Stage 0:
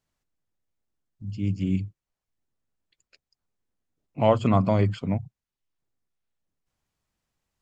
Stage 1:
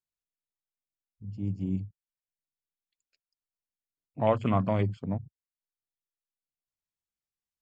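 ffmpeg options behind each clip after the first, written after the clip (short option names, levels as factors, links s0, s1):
-af "afwtdn=0.0126,highshelf=f=2300:g=8.5,volume=0.531"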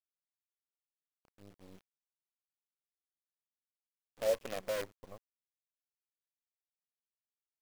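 -filter_complex "[0:a]asplit=3[s0][s1][s2];[s0]bandpass=f=530:t=q:w=8,volume=1[s3];[s1]bandpass=f=1840:t=q:w=8,volume=0.501[s4];[s2]bandpass=f=2480:t=q:w=8,volume=0.355[s5];[s3][s4][s5]amix=inputs=3:normalize=0,acrusher=bits=7:dc=4:mix=0:aa=0.000001"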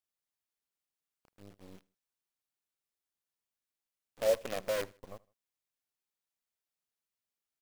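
-af "aecho=1:1:78|156:0.0631|0.0246,volume=1.41"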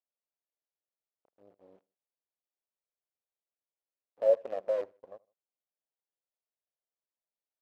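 -filter_complex "[0:a]bandpass=f=570:t=q:w=2.1:csg=0,asplit=2[s0][s1];[s1]aeval=exprs='sgn(val(0))*max(abs(val(0))-0.00422,0)':c=same,volume=0.398[s2];[s0][s2]amix=inputs=2:normalize=0,volume=1.19"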